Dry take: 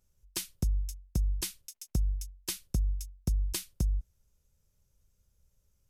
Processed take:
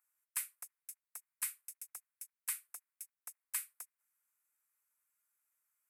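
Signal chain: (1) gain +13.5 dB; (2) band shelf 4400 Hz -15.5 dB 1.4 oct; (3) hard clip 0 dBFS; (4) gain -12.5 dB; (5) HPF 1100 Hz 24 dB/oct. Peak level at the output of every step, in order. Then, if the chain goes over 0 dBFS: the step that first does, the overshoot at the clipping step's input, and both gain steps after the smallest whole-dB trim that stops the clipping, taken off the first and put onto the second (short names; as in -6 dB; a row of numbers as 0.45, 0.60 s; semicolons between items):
-5.5, -5.0, -5.0, -17.5, -23.5 dBFS; no overload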